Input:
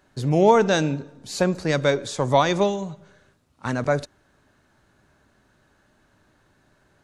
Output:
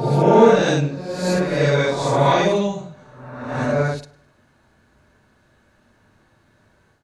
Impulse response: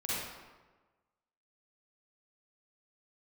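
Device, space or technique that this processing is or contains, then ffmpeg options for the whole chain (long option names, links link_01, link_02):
reverse reverb: -filter_complex "[0:a]aecho=1:1:103|206|309:0.0794|0.0302|0.0115,areverse[link_01];[1:a]atrim=start_sample=2205[link_02];[link_01][link_02]afir=irnorm=-1:irlink=0,areverse,volume=-2dB"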